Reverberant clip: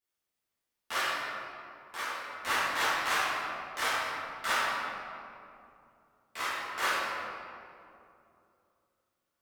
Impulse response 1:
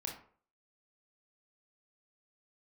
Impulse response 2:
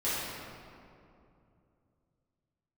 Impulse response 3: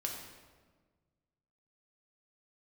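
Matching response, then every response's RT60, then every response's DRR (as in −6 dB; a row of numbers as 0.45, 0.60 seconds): 2; 0.50, 2.6, 1.5 seconds; 0.0, −12.5, 0.0 decibels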